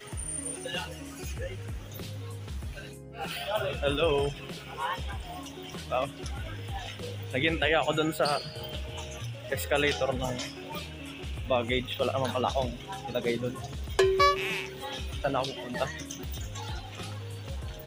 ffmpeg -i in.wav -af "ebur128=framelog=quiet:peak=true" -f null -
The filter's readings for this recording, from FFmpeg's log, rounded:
Integrated loudness:
  I:         -31.5 LUFS
  Threshold: -41.5 LUFS
Loudness range:
  LRA:         6.5 LU
  Threshold: -51.0 LUFS
  LRA low:   -35.3 LUFS
  LRA high:  -28.7 LUFS
True peak:
  Peak:       -9.0 dBFS